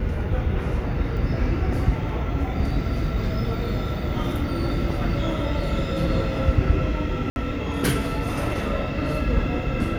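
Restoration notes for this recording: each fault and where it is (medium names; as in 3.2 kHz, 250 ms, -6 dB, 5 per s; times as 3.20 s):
1.17 s: dropout 2.6 ms
7.30–7.36 s: dropout 61 ms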